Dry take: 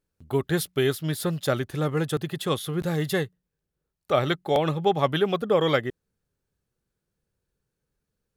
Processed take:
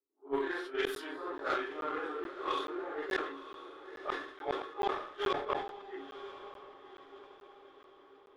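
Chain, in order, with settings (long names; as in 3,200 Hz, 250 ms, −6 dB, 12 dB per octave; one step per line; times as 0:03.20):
random phases in long frames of 200 ms
Chebyshev high-pass with heavy ripple 270 Hz, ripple 9 dB
tilt shelving filter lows −6 dB, about 660 Hz
low-pass that shuts in the quiet parts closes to 370 Hz, open at −22.5 dBFS
reversed playback
upward compression, threshold −31 dBFS
reversed playback
harmonic generator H 2 −21 dB, 3 −15 dB, 5 −40 dB, 7 −30 dB, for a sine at −10.5 dBFS
gate with flip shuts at −24 dBFS, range −39 dB
on a send: feedback delay with all-pass diffusion 983 ms, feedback 45%, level −12 dB
on the sum: regular buffer underruns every 0.43 s, samples 512, zero, from 0:00.95
level that may fall only so fast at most 82 dB per second
level +6.5 dB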